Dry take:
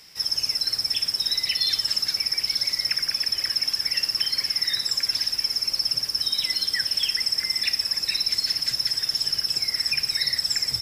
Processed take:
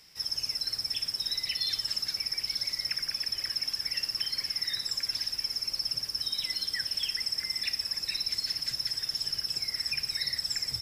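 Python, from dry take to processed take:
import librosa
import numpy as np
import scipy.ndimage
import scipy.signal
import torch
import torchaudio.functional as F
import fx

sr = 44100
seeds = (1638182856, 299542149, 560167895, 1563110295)

y = fx.low_shelf(x, sr, hz=120.0, db=5.5)
y = y * librosa.db_to_amplitude(-7.5)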